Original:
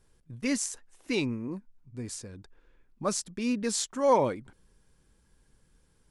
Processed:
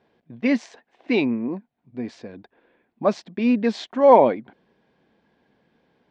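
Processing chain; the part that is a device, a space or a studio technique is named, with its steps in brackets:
kitchen radio (loudspeaker in its box 230–3,400 Hz, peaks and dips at 230 Hz +5 dB, 700 Hz +9 dB, 1,300 Hz −7 dB, 2,900 Hz −3 dB)
level +8.5 dB

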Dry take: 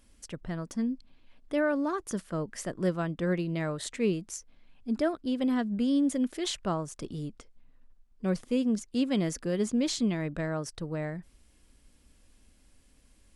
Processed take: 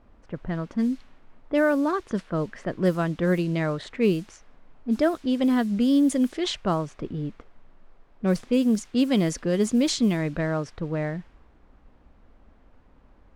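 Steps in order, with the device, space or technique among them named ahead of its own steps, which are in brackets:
cassette deck with a dynamic noise filter (white noise bed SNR 26 dB; low-pass that shuts in the quiet parts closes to 880 Hz, open at −23.5 dBFS)
level +6 dB

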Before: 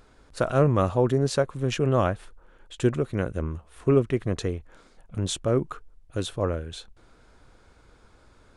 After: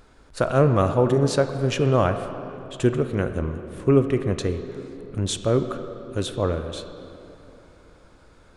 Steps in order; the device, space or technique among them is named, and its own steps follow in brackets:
filtered reverb send (on a send: high-pass filter 170 Hz 12 dB per octave + low-pass filter 5,000 Hz 12 dB per octave + convolution reverb RT60 3.2 s, pre-delay 14 ms, DRR 8 dB)
on the sum: level +2.5 dB

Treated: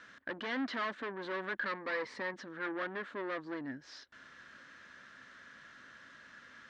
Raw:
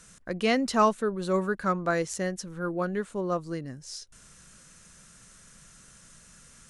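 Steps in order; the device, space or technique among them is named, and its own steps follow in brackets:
guitar amplifier (tube saturation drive 37 dB, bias 0.25; bass and treble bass −13 dB, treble +1 dB; loudspeaker in its box 85–3,600 Hz, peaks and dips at 170 Hz −9 dB, 270 Hz +8 dB, 450 Hz −5 dB, 760 Hz −4 dB, 1,700 Hz +9 dB, 2,600 Hz −5 dB)
0:01.65–0:02.34: EQ curve with evenly spaced ripples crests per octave 0.92, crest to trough 9 dB
level +3.5 dB

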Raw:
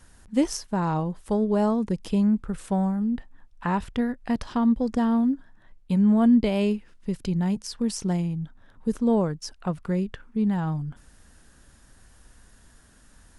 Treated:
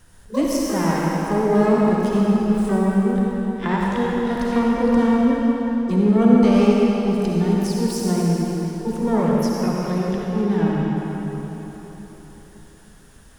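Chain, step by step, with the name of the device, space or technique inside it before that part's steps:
shimmer-style reverb (pitch-shifted copies added +12 semitones −8 dB; convolution reverb RT60 4.1 s, pre-delay 49 ms, DRR −3.5 dB)

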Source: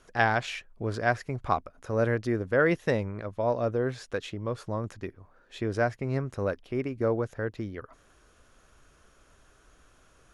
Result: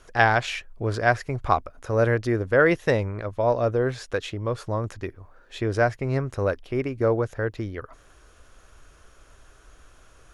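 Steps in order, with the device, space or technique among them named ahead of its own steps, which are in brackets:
low shelf boost with a cut just above (low-shelf EQ 70 Hz +5.5 dB; parametric band 200 Hz −5.5 dB 0.93 octaves)
level +5.5 dB

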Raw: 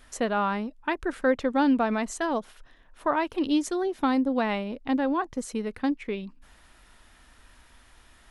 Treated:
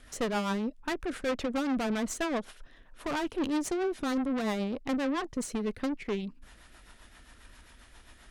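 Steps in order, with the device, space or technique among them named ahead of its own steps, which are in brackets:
overdriven rotary cabinet (tube saturation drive 32 dB, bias 0.55; rotating-speaker cabinet horn 7.5 Hz)
level +6 dB

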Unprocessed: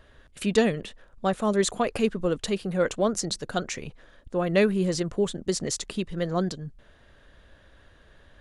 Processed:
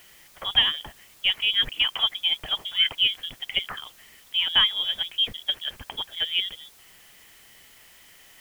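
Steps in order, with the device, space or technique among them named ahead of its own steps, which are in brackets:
scrambled radio voice (band-pass filter 380–2,900 Hz; voice inversion scrambler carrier 3,600 Hz; white noise bed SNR 26 dB)
low-shelf EQ 99 Hz +6 dB
level +3.5 dB

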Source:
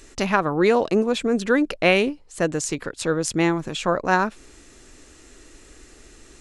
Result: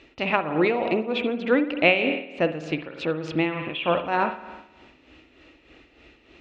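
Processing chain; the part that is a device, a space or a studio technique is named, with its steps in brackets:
0:03.46–0:03.92: high shelf with overshoot 4,000 Hz −9.5 dB, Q 3
combo amplifier with spring reverb and tremolo (spring reverb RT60 1.1 s, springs 51 ms, chirp 40 ms, DRR 6.5 dB; amplitude tremolo 3.3 Hz, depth 59%; loudspeaker in its box 88–3,400 Hz, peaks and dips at 110 Hz −9 dB, 200 Hz −8 dB, 410 Hz −6 dB, 1,100 Hz −5 dB, 1,600 Hz −8 dB, 2,600 Hz +5 dB)
level +2 dB

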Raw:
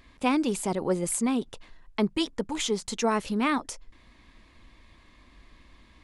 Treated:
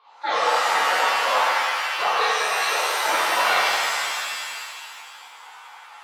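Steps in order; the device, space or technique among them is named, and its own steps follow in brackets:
voice changer toy (ring modulator whose carrier an LFO sweeps 950 Hz, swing 20%, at 4.3 Hz; loudspeaker in its box 470–4,600 Hz, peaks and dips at 480 Hz +5 dB, 890 Hz +10 dB, 2,200 Hz +4 dB, 4,000 Hz +9 dB)
reverb with rising layers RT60 2.1 s, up +7 semitones, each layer −2 dB, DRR −10.5 dB
level −7 dB

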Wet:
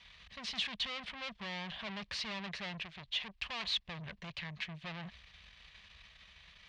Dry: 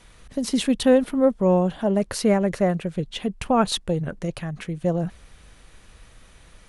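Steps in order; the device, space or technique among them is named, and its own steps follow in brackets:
scooped metal amplifier (tube saturation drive 34 dB, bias 0.75; loudspeaker in its box 88–4,100 Hz, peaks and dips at 110 Hz −10 dB, 210 Hz +5 dB, 510 Hz −5 dB, 820 Hz −5 dB, 1,400 Hz −9 dB; guitar amp tone stack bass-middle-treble 10-0-10)
0:02.84–0:03.79: parametric band 170 Hz −7.5 dB 0.97 octaves
level +8.5 dB

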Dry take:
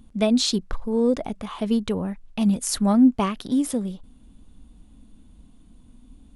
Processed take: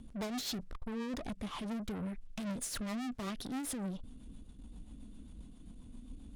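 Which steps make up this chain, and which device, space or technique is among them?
0:00.71–0:02.40: parametric band 680 Hz −4 dB 2.3 octaves
overdriven rotary cabinet (tube saturation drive 38 dB, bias 0.3; rotating-speaker cabinet horn 7.5 Hz)
level +2.5 dB

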